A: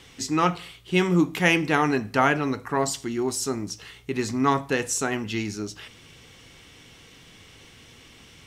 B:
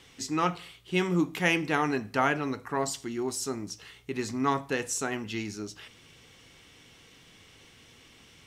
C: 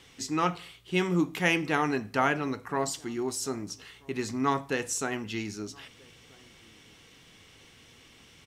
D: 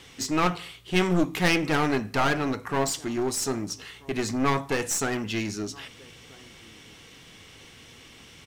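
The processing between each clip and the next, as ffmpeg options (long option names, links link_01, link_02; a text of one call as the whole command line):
ffmpeg -i in.wav -af "lowshelf=frequency=130:gain=-3.5,volume=-5dB" out.wav
ffmpeg -i in.wav -filter_complex "[0:a]asplit=2[link_01][link_02];[link_02]adelay=1283,volume=-27dB,highshelf=frequency=4000:gain=-28.9[link_03];[link_01][link_03]amix=inputs=2:normalize=0" out.wav
ffmpeg -i in.wav -af "aeval=exprs='clip(val(0),-1,0.0237)':channel_layout=same,volume=6dB" out.wav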